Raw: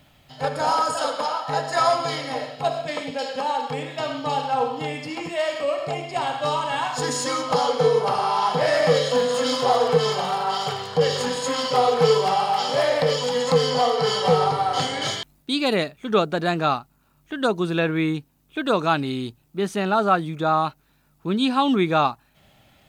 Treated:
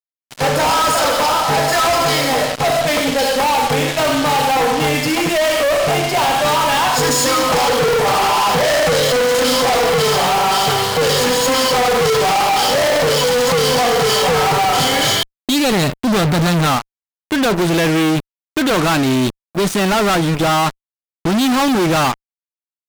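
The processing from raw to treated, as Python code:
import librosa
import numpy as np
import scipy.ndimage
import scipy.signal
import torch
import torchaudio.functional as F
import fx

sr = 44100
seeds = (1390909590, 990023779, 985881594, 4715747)

y = fx.bass_treble(x, sr, bass_db=13, treble_db=3, at=(15.72, 16.67))
y = fx.fuzz(y, sr, gain_db=39.0, gate_db=-37.0)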